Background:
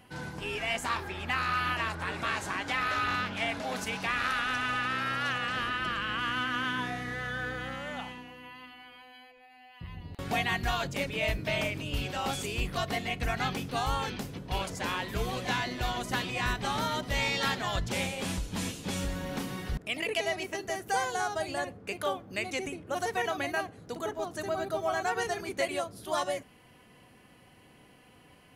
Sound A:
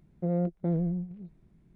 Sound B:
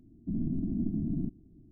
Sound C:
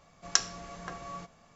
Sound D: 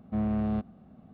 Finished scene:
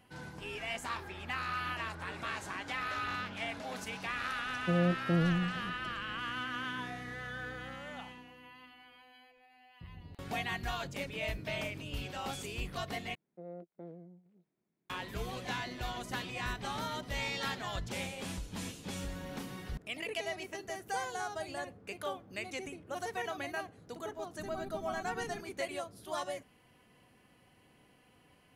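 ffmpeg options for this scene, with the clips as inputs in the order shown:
-filter_complex "[1:a]asplit=2[a][b];[0:a]volume=-7dB[c];[b]highpass=330[d];[c]asplit=2[e][f];[e]atrim=end=13.154[g];[d]atrim=end=1.75,asetpts=PTS-STARTPTS,volume=-13dB[h];[f]atrim=start=14.896[i];[a]atrim=end=1.75,asetpts=PTS-STARTPTS,volume=-1dB,afade=t=in:d=0.004:c=hsin,afade=t=out:st=1.746:d=0.004:c=hsin,adelay=196245S[j];[2:a]atrim=end=1.71,asetpts=PTS-STARTPTS,volume=-17dB,afade=t=in:d=0.004:c=hsin,afade=t=out:st=1.706:d=0.004:c=hsin,adelay=24110[k];[g][h]acrossfade=d=0.004:c1=hsin:c2=hsin[l];[l][i]acrossfade=d=0.004:c1=hsin:c2=hsin[m];[m][j][k]amix=inputs=3:normalize=0"

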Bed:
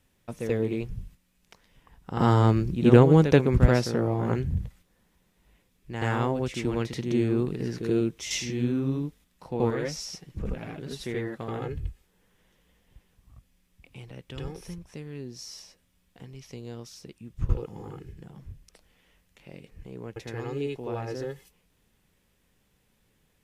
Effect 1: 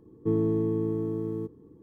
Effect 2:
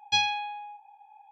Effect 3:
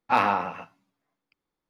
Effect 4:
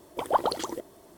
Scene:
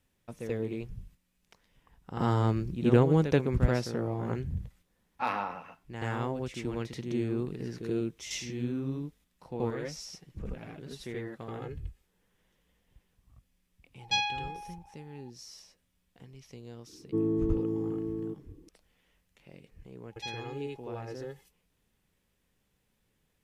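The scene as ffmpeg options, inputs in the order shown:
-filter_complex "[2:a]asplit=2[a][b];[0:a]volume=-6.5dB[c];[1:a]equalizer=f=310:w=2.1:g=6[d];[3:a]atrim=end=1.69,asetpts=PTS-STARTPTS,volume=-10dB,afade=t=in:d=0.004:c=hsin,afade=t=out:st=1.686:d=0.004:c=hsin,adelay=5100[e];[a]atrim=end=1.31,asetpts=PTS-STARTPTS,volume=-4dB,afade=t=in:d=0.004:c=hsin,afade=t=out:st=1.306:d=0.004:c=hsin,adelay=13990[f];[d]atrim=end=1.82,asetpts=PTS-STARTPTS,volume=-7dB,afade=t=in:d=0.004:c=hsin,afade=t=out:st=1.816:d=0.004:c=hsin,adelay=16870[g];[b]atrim=end=1.31,asetpts=PTS-STARTPTS,volume=-16dB,afade=t=in:d=0.004:c=hsin,afade=t=out:st=1.306:d=0.004:c=hsin,adelay=20100[h];[c][e][f][g][h]amix=inputs=5:normalize=0"

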